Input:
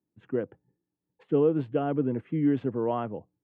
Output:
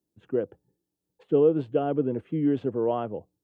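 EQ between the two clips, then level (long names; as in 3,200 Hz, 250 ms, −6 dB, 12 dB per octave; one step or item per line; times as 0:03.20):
octave-band graphic EQ 125/250/1,000/2,000 Hz −7/−6/−6/−10 dB
+6.5 dB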